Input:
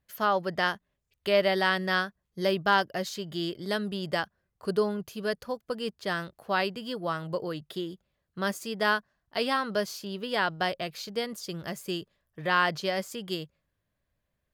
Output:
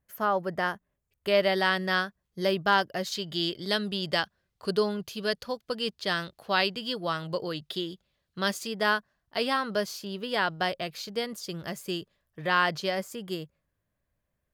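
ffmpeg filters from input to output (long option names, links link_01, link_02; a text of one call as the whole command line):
ffmpeg -i in.wav -af "asetnsamples=nb_out_samples=441:pad=0,asendcmd='1.28 equalizer g 1;3.12 equalizer g 8.5;8.67 equalizer g 1;12.95 equalizer g -5',equalizer=frequency=3900:width_type=o:width=1.4:gain=-9.5" out.wav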